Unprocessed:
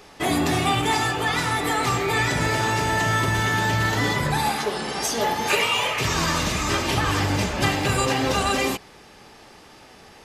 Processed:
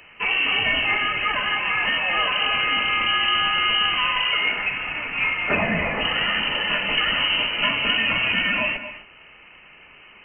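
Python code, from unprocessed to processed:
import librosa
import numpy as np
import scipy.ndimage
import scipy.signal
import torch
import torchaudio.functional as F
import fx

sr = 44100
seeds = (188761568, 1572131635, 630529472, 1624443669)

y = fx.freq_invert(x, sr, carrier_hz=3000)
y = fx.rev_gated(y, sr, seeds[0], gate_ms=290, shape='rising', drr_db=10.5)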